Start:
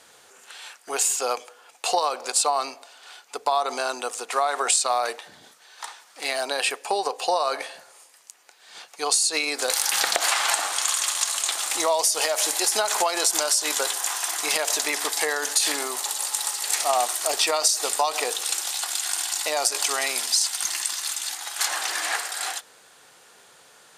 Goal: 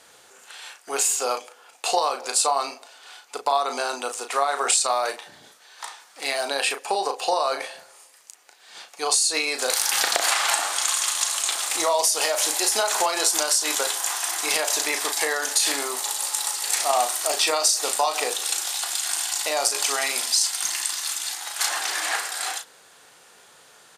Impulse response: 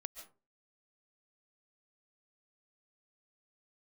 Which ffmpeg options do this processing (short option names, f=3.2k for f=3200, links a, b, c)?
-filter_complex "[0:a]asplit=2[a][b];[b]adelay=36,volume=-7dB[c];[a][c]amix=inputs=2:normalize=0"